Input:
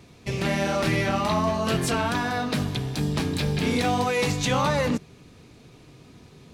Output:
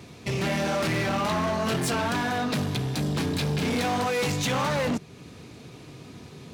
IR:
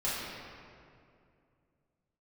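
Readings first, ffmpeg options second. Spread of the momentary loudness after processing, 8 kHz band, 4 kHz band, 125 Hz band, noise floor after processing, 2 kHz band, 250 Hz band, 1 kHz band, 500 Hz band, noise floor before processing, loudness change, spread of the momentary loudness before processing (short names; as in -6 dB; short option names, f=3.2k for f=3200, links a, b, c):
19 LU, -0.5 dB, -1.0 dB, -2.0 dB, -47 dBFS, -1.0 dB, -1.5 dB, -2.0 dB, -2.0 dB, -51 dBFS, -1.5 dB, 4 LU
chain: -filter_complex "[0:a]asplit=2[a][b];[b]acompressor=threshold=-37dB:ratio=6,volume=-1dB[c];[a][c]amix=inputs=2:normalize=0,asoftclip=type=hard:threshold=-23dB,highpass=76"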